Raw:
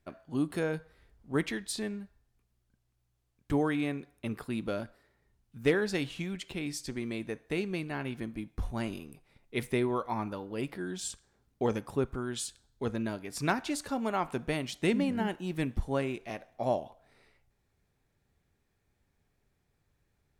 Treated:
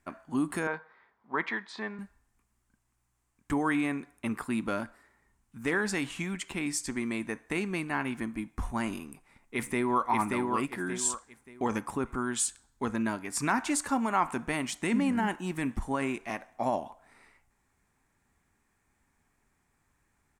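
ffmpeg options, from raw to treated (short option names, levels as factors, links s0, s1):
-filter_complex "[0:a]asettb=1/sr,asplit=3[s0][s1][s2];[s0]atrim=end=0.674[s3];[s1]atrim=start=0.67:end=1.99,asetpts=PTS-STARTPTS,afade=t=in:d=0.004:c=qsin,afade=t=out:st=1.316:d=0.004:c=qsin,highpass=280,equalizer=f=290:t=q:w=4:g=-10,equalizer=f=1000:t=q:w=4:g=4,equalizer=f=2800:t=q:w=4:g=-7,lowpass=f=3800:w=0.5412,lowpass=f=3800:w=1.3066[s4];[s2]atrim=start=1.986[s5];[s3][s4]acrossfade=d=0.004:c1=hsin:c2=qsin[s6];[s6][s5]acrossfade=d=0.004:c1=qsin:c2=hsin,asplit=2[s7][s8];[s8]afade=t=in:st=9.08:d=0.01,afade=t=out:st=10.07:d=0.01,aecho=0:1:580|1160|1740|2320:0.630957|0.189287|0.0567862|0.0170358[s9];[s7][s9]amix=inputs=2:normalize=0,alimiter=limit=0.0708:level=0:latency=1:release=25,equalizer=f=125:t=o:w=1:g=-4,equalizer=f=250:t=o:w=1:g=6,equalizer=f=500:t=o:w=1:g=-5,equalizer=f=1000:t=o:w=1:g=10,equalizer=f=2000:t=o:w=1:g=6,equalizer=f=4000:t=o:w=1:g=-5,equalizer=f=8000:t=o:w=1:g=11"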